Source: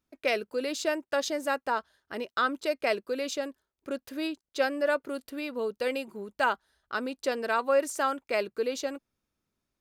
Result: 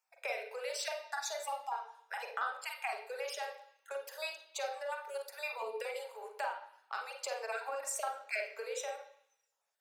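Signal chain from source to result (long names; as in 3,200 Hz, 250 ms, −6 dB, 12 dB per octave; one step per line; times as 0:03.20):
time-frequency cells dropped at random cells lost 28%
Chebyshev high-pass filter 430 Hz, order 8
parametric band 840 Hz +13.5 dB 0.54 octaves
downward compressor 6 to 1, threshold −33 dBFS, peak gain reduction 17.5 dB
convolution reverb RT60 0.65 s, pre-delay 38 ms, DRR 2.5 dB
level +1.5 dB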